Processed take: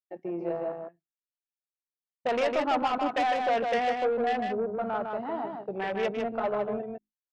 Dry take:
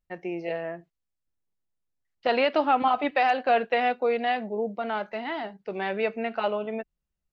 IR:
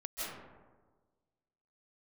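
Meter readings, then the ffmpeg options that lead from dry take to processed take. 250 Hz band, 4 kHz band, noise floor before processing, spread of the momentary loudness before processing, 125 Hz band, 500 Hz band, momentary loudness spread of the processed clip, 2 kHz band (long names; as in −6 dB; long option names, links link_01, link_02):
−1.5 dB, −4.0 dB, −83 dBFS, 12 LU, can't be measured, −1.5 dB, 9 LU, −5.0 dB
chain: -filter_complex "[0:a]bandreject=frequency=52.79:width_type=h:width=4,bandreject=frequency=105.58:width_type=h:width=4,bandreject=frequency=158.37:width_type=h:width=4,bandreject=frequency=211.16:width_type=h:width=4,bandreject=frequency=263.95:width_type=h:width=4,bandreject=frequency=316.74:width_type=h:width=4,bandreject=frequency=369.53:width_type=h:width=4,agate=range=-33dB:threshold=-41dB:ratio=3:detection=peak,afwtdn=0.0282,asoftclip=type=tanh:threshold=-22dB,asplit=2[link_01][link_02];[link_02]aecho=0:1:154:0.596[link_03];[link_01][link_03]amix=inputs=2:normalize=0"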